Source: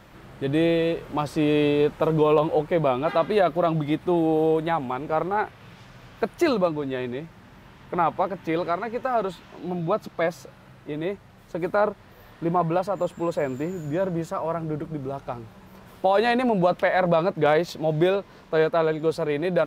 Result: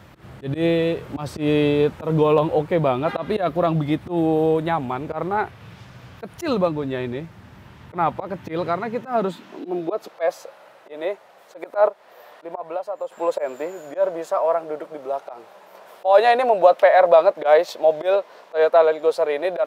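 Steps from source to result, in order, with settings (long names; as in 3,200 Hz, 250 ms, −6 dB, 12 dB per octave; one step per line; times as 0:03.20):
volume swells 110 ms
high-pass filter sweep 77 Hz → 590 Hz, 0:08.38–0:10.23
0:11.88–0:13.12: downward compressor 2 to 1, threshold −36 dBFS, peak gain reduction 12.5 dB
level +2 dB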